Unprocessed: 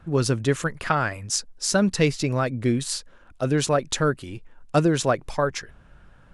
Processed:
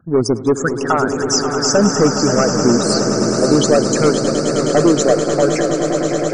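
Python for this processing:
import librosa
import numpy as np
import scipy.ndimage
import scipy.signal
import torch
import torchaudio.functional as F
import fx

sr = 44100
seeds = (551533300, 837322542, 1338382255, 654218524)

p1 = fx.envelope_sharpen(x, sr, power=2.0)
p2 = scipy.signal.sosfilt(scipy.signal.butter(2, 180.0, 'highpass', fs=sr, output='sos'), p1)
p3 = np.sign(p2) * np.maximum(np.abs(p2) - 10.0 ** (-35.0 / 20.0), 0.0)
p4 = p2 + (p3 * 10.0 ** (-5.0 / 20.0))
p5 = fx.filter_lfo_notch(p4, sr, shape='saw_down', hz=0.54, low_hz=990.0, high_hz=4200.0, q=0.92)
p6 = np.clip(p5, -10.0 ** (-14.5 / 20.0), 10.0 ** (-14.5 / 20.0))
p7 = fx.spec_topn(p6, sr, count=64)
p8 = fx.echo_swell(p7, sr, ms=105, loudest=8, wet_db=-12.0)
p9 = fx.echo_warbled(p8, sr, ms=544, feedback_pct=57, rate_hz=2.8, cents=123, wet_db=-10.5)
y = p9 * 10.0 ** (6.5 / 20.0)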